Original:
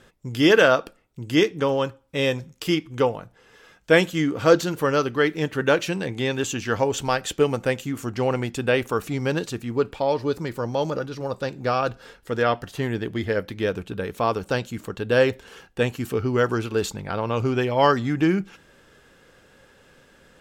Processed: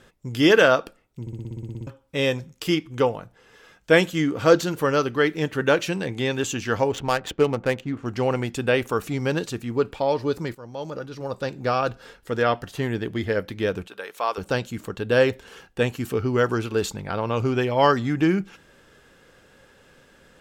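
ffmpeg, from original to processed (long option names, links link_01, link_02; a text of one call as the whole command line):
ffmpeg -i in.wav -filter_complex "[0:a]asettb=1/sr,asplit=3[link_01][link_02][link_03];[link_01]atrim=end=6.924[link_04];[link_02]atrim=start=6.92:end=8.06,asetpts=PTS-STARTPTS,afade=type=in:duration=0.004:curve=qsin,afade=type=out:start_time=1.136:duration=0.004:curve=qsin,adynamicsmooth=sensitivity=4:basefreq=1300[link_05];[link_03]atrim=start=8.056[link_06];[link_04][link_05]acrossfade=duration=0.004:curve1=hsin:curve2=qsin[link_07];[link_07][link_06]acrossfade=duration=0.004:curve1=qsin:curve2=hsin,asettb=1/sr,asplit=3[link_08][link_09][link_10];[link_08]atrim=end=13.874[link_11];[link_09]atrim=start=13.87:end=14.38,asetpts=PTS-STARTPTS,afade=type=in:duration=0.004:curve=qsin,afade=type=out:start_time=0.506:duration=0.004:curve=qsin,highpass=690[link_12];[link_10]atrim=start=14.376[link_13];[link_11][link_12]acrossfade=duration=0.004:curve1=hsin:curve2=qsin[link_14];[link_14][link_13]acrossfade=duration=0.004:curve1=qsin:curve2=hsin,asplit=13[link_15][link_16][link_17][link_18][link_19][link_20][link_21][link_22][link_23][link_24][link_25][link_26][link_27];[link_15]atrim=end=1.272[link_28];[link_16]atrim=start=1.208:end=1.272[link_29];[link_17]atrim=start=1.208:end=1.272[link_30];[link_18]atrim=start=1.208:end=1.272[link_31];[link_19]atrim=start=1.208:end=1.272[link_32];[link_20]atrim=start=1.208:end=1.272[link_33];[link_21]atrim=start=1.208:end=1.272[link_34];[link_22]atrim=start=1.208:end=1.272[link_35];[link_23]atrim=start=1.208:end=1.272[link_36];[link_24]atrim=start=1.208:end=1.272[link_37];[link_25]atrim=start=1.208:end=1.272[link_38];[link_26]atrim=start=1.868:end=10.55,asetpts=PTS-STARTPTS,afade=type=out:start_time=8.678:duration=0.004:curve=hsin:silence=0.141254[link_39];[link_27]atrim=start=10.55,asetpts=PTS-STARTPTS,afade=type=in:duration=0.94:silence=0.141254[link_40];[link_28][link_29]acrossfade=duration=0.004:curve1=hsin:curve2=hsin[link_41];[link_41][link_30]acrossfade=duration=0.004:curve1=hsin:curve2=hsin[link_42];[link_42][link_31]acrossfade=duration=0.004:curve1=hsin:curve2=hsin[link_43];[link_43][link_32]acrossfade=duration=0.004:curve1=hsin:curve2=hsin[link_44];[link_44][link_33]acrossfade=duration=0.004:curve1=hsin:curve2=hsin[link_45];[link_45][link_34]acrossfade=duration=0.004:curve1=hsin:curve2=hsin[link_46];[link_46][link_35]acrossfade=duration=0.004:curve1=hsin:curve2=hsin[link_47];[link_47][link_36]acrossfade=duration=0.004:curve1=hsin:curve2=hsin[link_48];[link_48][link_37]acrossfade=duration=0.004:curve1=hsin:curve2=hsin[link_49];[link_49][link_38]acrossfade=duration=0.004:curve1=hsin:curve2=hsin[link_50];[link_39][link_40]concat=n=2:v=0:a=1[link_51];[link_50][link_51]acrossfade=duration=0.004:curve1=hsin:curve2=hsin" out.wav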